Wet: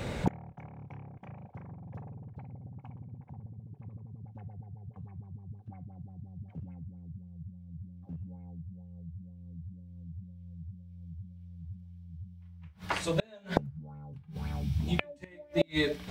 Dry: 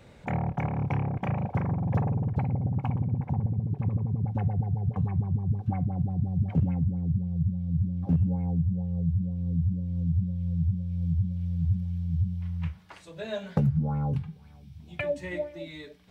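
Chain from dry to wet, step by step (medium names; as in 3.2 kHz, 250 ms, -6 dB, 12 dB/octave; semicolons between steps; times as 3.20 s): inverted gate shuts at -29 dBFS, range -34 dB; trim +16 dB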